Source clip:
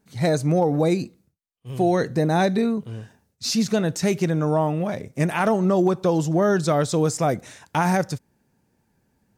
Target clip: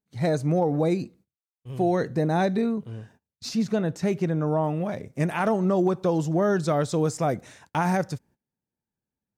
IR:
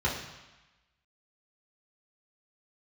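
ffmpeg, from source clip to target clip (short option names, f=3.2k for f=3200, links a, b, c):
-af "asetnsamples=n=441:p=0,asendcmd='3.49 highshelf g -12;4.64 highshelf g -4.5',highshelf=f=3k:g=-6.5,agate=range=-20dB:threshold=-50dB:ratio=16:detection=peak,volume=-3dB"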